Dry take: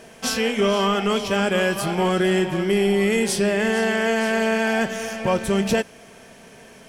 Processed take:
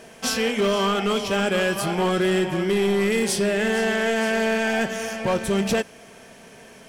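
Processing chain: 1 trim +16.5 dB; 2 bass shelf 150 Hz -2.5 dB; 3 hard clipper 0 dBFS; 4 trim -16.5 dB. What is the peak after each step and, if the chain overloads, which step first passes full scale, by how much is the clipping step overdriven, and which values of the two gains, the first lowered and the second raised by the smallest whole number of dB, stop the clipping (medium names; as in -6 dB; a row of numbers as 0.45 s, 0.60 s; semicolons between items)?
+5.5 dBFS, +5.5 dBFS, 0.0 dBFS, -16.5 dBFS; step 1, 5.5 dB; step 1 +10.5 dB, step 4 -10.5 dB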